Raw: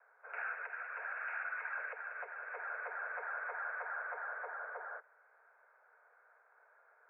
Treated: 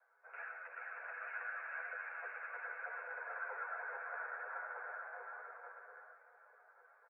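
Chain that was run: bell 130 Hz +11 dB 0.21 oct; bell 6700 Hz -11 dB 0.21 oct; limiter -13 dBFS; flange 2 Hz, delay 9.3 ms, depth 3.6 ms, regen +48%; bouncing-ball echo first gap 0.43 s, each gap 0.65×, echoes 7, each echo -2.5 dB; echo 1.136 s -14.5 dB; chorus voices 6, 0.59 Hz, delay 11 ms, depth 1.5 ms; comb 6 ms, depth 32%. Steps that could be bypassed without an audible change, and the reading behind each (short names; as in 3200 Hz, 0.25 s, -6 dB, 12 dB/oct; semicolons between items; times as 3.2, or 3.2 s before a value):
bell 130 Hz: input band starts at 360 Hz; bell 6700 Hz: input band ends at 2600 Hz; limiter -13 dBFS: input peak -28.5 dBFS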